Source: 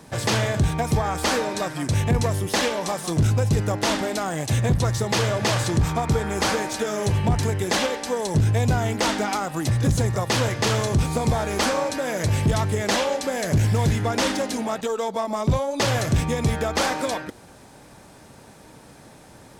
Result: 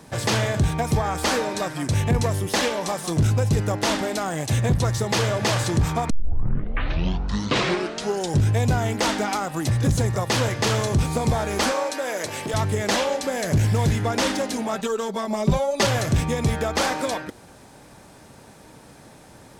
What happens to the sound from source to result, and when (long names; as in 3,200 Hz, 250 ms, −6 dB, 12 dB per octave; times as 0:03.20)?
0:06.10: tape start 2.39 s
0:11.72–0:12.54: high-pass filter 360 Hz
0:14.73–0:15.87: comb filter 5.1 ms, depth 71%